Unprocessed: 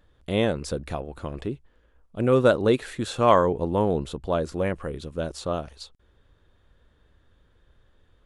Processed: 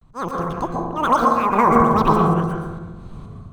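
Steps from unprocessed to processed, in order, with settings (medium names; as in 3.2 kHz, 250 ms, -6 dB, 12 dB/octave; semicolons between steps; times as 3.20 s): dead-time distortion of 0.085 ms; level rider gain up to 15 dB; tilt EQ -2.5 dB/octave; small resonant body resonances 440/2600 Hz, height 9 dB, ringing for 30 ms; peak limiter -3.5 dBFS, peak gain reduction 9 dB; slow attack 498 ms; dynamic bell 8.5 kHz, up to +7 dB, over -53 dBFS, Q 1.2; speed mistake 33 rpm record played at 78 rpm; vibrato 0.37 Hz 63 cents; reverberation RT60 1.2 s, pre-delay 114 ms, DRR -1 dB; trim -4 dB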